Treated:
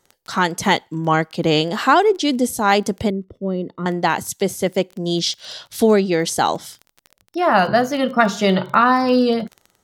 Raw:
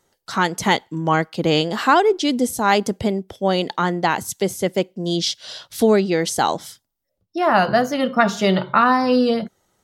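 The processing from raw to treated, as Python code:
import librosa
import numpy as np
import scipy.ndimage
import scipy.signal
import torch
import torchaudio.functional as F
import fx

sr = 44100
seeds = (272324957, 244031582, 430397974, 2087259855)

y = fx.dmg_crackle(x, sr, seeds[0], per_s=22.0, level_db=-29.0)
y = fx.moving_average(y, sr, points=54, at=(3.1, 3.86))
y = F.gain(torch.from_numpy(y), 1.0).numpy()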